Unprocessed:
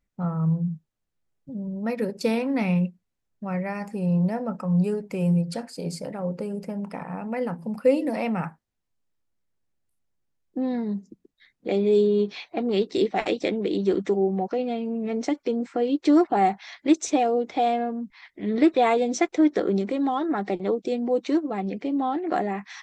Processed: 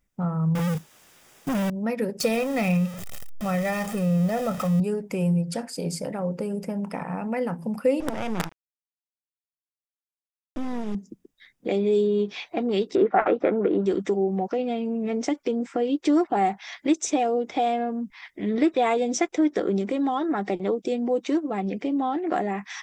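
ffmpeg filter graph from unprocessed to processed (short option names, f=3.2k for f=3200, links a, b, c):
-filter_complex "[0:a]asettb=1/sr,asplit=3[a][b][c];[a]atrim=end=0.554[d];[b]atrim=start=0.55:end=1.7,asetpts=PTS-STARTPTS,afade=t=in:d=0.004:c=qsin,afade=t=out:st=1.146:d=0.004:c=qsin,asplit=2[e][f];[f]highpass=f=720:p=1,volume=38dB,asoftclip=type=tanh:threshold=-19dB[g];[e][g]amix=inputs=2:normalize=0,lowpass=f=6.8k:p=1,volume=-6dB,acrusher=bits=3:mode=log:mix=0:aa=0.000001[h];[c]atrim=start=1.696[i];[d][h]acrossfade=d=0.004:c1=hsin:c2=qsin[j];[j][i]acrossfade=d=0.004:c1=qsin:c2=hsin,asettb=1/sr,asplit=3[k][l][m];[k]atrim=end=2.204[n];[l]atrim=start=2.2:end=4.8,asetpts=PTS-STARTPTS,afade=t=in:d=0.004:c=qsin,afade=t=out:st=2.596:d=0.004:c=qsin,aeval=exprs='val(0)+0.5*0.0224*sgn(val(0))':c=same,aecho=1:1:1.6:0.6,atrim=end_sample=114660[o];[m]atrim=start=4.796[p];[n][o]acrossfade=d=0.004:c1=hsin:c2=qsin[q];[q][p]acrossfade=d=0.004:c1=qsin:c2=hsin,asettb=1/sr,asplit=3[r][s][t];[r]atrim=end=8.004[u];[s]atrim=start=8:end=10.95,asetpts=PTS-STARTPTS,afade=t=in:d=0.004:c=qsin,afade=t=out:st=2.946:d=0.004:c=qsin,equalizer=f=180:t=o:w=0.31:g=3.5,acrusher=bits=4:dc=4:mix=0:aa=0.000001,adynamicsmooth=sensitivity=4.5:basefreq=2.7k[v];[t]atrim=start=10.946[w];[u][v]acrossfade=d=0.004:c1=hsin:c2=qsin[x];[x][w]acrossfade=d=0.004:c1=qsin:c2=hsin,asettb=1/sr,asplit=3[y][z][aa];[y]atrim=end=12.954[ab];[z]atrim=start=12.95:end=13.86,asetpts=PTS-STARTPTS,afade=t=in:d=0.004:c=qsin,afade=t=out:st=0.906:d=0.004:c=qsin,lowpass=f=1.4k:t=q:w=6.1,equalizer=f=630:w=0.59:g=6.5[ac];[aa]atrim=start=13.856[ad];[ab][ac]acrossfade=d=0.004:c1=hsin:c2=qsin[ae];[ae][ad]acrossfade=d=0.004:c1=qsin:c2=hsin,highshelf=f=5.2k:g=5,bandreject=f=4.2k:w=7.4,acompressor=threshold=-33dB:ratio=1.5,volume=4dB"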